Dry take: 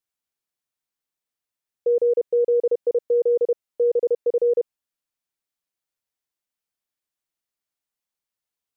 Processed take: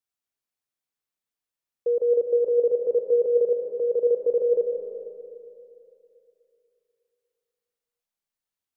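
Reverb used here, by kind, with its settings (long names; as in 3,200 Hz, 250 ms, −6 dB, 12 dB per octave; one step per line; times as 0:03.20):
comb and all-pass reverb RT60 2.8 s, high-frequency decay 0.4×, pre-delay 100 ms, DRR 4 dB
level −3.5 dB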